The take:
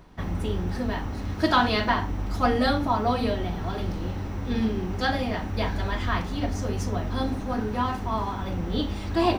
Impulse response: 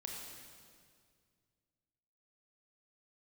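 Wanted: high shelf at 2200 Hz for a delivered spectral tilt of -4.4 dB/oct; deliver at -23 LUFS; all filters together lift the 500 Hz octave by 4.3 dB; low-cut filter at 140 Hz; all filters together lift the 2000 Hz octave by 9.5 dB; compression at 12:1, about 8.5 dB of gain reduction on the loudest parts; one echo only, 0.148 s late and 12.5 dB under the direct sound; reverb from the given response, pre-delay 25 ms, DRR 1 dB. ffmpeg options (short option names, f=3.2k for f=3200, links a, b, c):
-filter_complex "[0:a]highpass=140,equalizer=f=500:t=o:g=4.5,equalizer=f=2k:t=o:g=8,highshelf=f=2.2k:g=7.5,acompressor=threshold=-20dB:ratio=12,aecho=1:1:148:0.237,asplit=2[a][b];[1:a]atrim=start_sample=2205,adelay=25[c];[b][c]afir=irnorm=-1:irlink=0,volume=0.5dB[d];[a][d]amix=inputs=2:normalize=0,volume=1dB"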